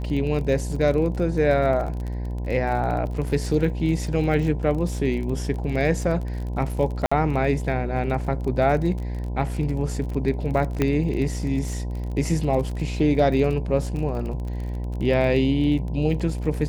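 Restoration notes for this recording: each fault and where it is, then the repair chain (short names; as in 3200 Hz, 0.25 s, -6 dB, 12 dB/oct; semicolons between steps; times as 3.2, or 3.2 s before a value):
buzz 60 Hz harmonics 17 -28 dBFS
crackle 33/s -30 dBFS
7.06–7.12 gap 55 ms
10.82 pop -9 dBFS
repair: de-click; de-hum 60 Hz, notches 17; interpolate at 7.06, 55 ms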